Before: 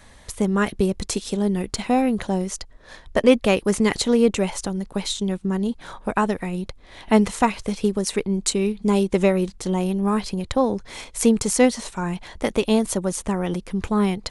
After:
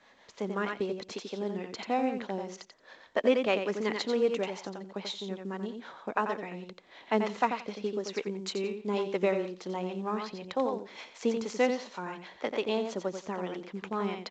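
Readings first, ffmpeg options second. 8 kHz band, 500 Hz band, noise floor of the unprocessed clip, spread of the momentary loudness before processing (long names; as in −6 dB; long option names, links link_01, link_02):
−20.0 dB, −8.0 dB, −48 dBFS, 10 LU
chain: -filter_complex "[0:a]aecho=1:1:88|176|264:0.501|0.0802|0.0128,acrossover=split=460[link_01][link_02];[link_01]aeval=exprs='val(0)*(1-0.5/2+0.5/2*cos(2*PI*6.4*n/s))':channel_layout=same[link_03];[link_02]aeval=exprs='val(0)*(1-0.5/2-0.5/2*cos(2*PI*6.4*n/s))':channel_layout=same[link_04];[link_03][link_04]amix=inputs=2:normalize=0,highpass=310,lowpass=4100,volume=-6dB" -ar 16000 -c:a pcm_mulaw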